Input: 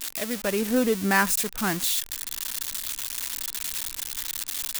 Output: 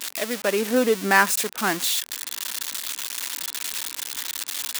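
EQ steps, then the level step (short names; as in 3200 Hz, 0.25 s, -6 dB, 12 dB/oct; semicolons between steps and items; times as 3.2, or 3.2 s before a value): HPF 300 Hz 12 dB/oct; high shelf 7300 Hz -6 dB; +5.0 dB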